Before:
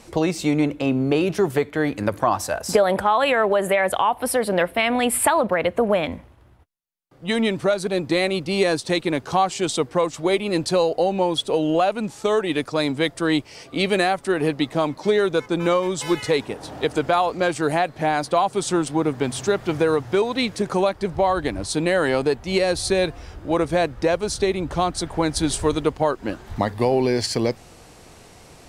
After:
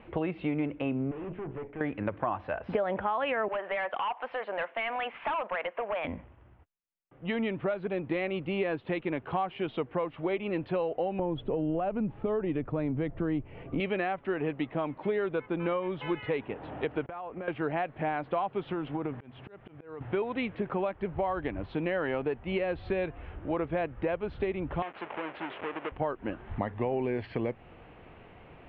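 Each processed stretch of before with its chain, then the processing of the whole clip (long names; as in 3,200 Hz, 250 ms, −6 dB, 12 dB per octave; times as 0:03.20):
0:01.11–0:01.81: mains-hum notches 60/120/180/240/300/360/420/480/540/600 Hz + tube saturation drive 29 dB, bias 0.7 + head-to-tape spacing loss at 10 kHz 37 dB
0:03.48–0:06.05: high-pass filter 730 Hz + parametric band 1,000 Hz +3.5 dB 1.2 octaves + hard clipping −19.5 dBFS
0:11.19–0:13.80: spectral tilt −4 dB per octave + downward compressor 2 to 1, threshold −19 dBFS
0:17.06–0:17.48: low-pass filter 2,600 Hz + noise gate −33 dBFS, range −24 dB + downward compressor 12 to 1, threshold −30 dBFS
0:18.72–0:20.01: downward compressor 20 to 1, threshold −20 dBFS + volume swells 532 ms
0:24.82–0:25.92: each half-wave held at its own peak + downward compressor 4 to 1, threshold −23 dBFS + band-pass filter 450–3,500 Hz
whole clip: Butterworth low-pass 3,000 Hz 48 dB per octave; downward compressor 2 to 1, threshold −27 dBFS; level −4.5 dB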